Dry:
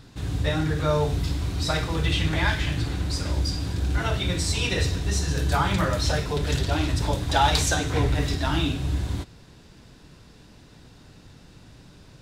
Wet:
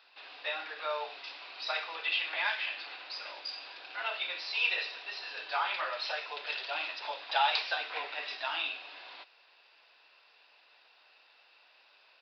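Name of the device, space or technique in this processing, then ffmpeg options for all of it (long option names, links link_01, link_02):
musical greeting card: -af "aresample=11025,aresample=44100,highpass=frequency=650:width=0.5412,highpass=frequency=650:width=1.3066,equalizer=frequency=2600:width_type=o:width=0.26:gain=10,volume=-6.5dB"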